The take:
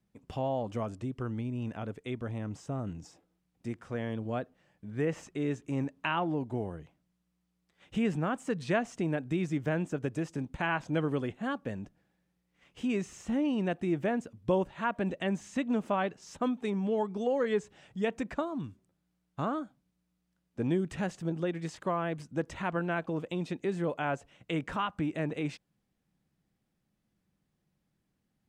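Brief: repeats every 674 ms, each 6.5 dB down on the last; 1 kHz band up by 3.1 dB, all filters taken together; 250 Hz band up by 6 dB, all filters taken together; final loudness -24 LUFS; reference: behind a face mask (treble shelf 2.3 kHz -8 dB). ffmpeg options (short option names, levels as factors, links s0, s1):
-af "equalizer=f=250:t=o:g=7.5,equalizer=f=1000:t=o:g=5,highshelf=f=2300:g=-8,aecho=1:1:674|1348|2022|2696|3370|4044:0.473|0.222|0.105|0.0491|0.0231|0.0109,volume=1.78"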